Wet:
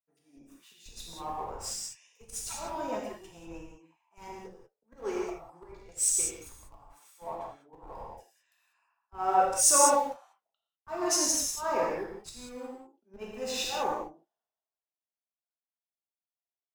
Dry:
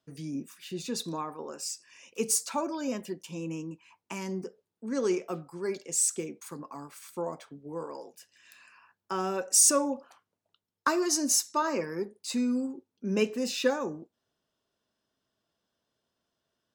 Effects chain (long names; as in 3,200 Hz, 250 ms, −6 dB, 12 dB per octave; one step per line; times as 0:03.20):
high-pass filter 590 Hz 6 dB per octave
parametric band 780 Hz +13 dB 0.8 octaves
notch filter 4,600 Hz, Q 15
volume swells 150 ms
in parallel at −9 dB: comparator with hysteresis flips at −34 dBFS
on the sum: reverb whose tail is shaped and stops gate 220 ms flat, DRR −3.5 dB
multiband upward and downward expander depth 70%
level −7.5 dB